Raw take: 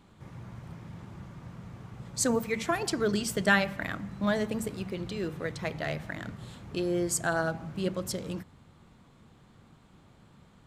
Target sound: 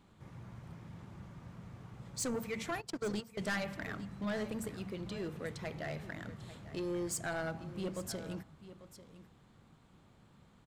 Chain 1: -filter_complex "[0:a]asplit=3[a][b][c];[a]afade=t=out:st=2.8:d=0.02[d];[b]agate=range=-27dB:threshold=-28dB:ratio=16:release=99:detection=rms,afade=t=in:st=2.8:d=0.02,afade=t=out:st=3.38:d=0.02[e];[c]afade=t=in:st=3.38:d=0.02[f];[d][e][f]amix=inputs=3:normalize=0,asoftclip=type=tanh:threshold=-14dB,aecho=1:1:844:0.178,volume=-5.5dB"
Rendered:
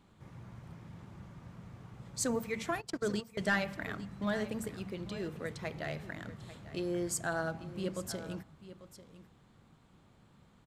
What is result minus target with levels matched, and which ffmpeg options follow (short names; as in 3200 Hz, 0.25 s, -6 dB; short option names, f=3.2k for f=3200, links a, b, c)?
soft clip: distortion -11 dB
-filter_complex "[0:a]asplit=3[a][b][c];[a]afade=t=out:st=2.8:d=0.02[d];[b]agate=range=-27dB:threshold=-28dB:ratio=16:release=99:detection=rms,afade=t=in:st=2.8:d=0.02,afade=t=out:st=3.38:d=0.02[e];[c]afade=t=in:st=3.38:d=0.02[f];[d][e][f]amix=inputs=3:normalize=0,asoftclip=type=tanh:threshold=-25.5dB,aecho=1:1:844:0.178,volume=-5.5dB"